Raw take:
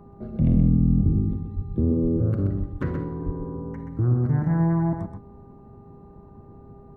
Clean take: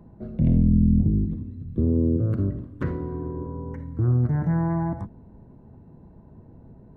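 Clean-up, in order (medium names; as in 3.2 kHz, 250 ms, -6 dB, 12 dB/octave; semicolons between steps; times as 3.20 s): de-hum 400.4 Hz, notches 3; de-plosive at 0.74/1.13/1.55/2.02/2.59/3.25 s; inverse comb 127 ms -6.5 dB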